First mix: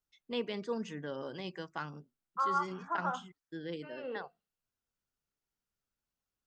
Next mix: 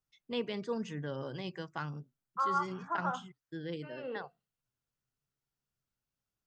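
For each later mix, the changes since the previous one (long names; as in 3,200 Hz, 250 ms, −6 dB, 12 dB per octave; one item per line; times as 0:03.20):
master: add parametric band 130 Hz +11.5 dB 0.46 octaves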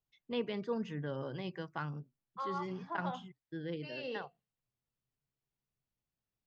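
first voice: add high-frequency loss of the air 150 metres
second voice: remove low-pass with resonance 1,400 Hz, resonance Q 5.2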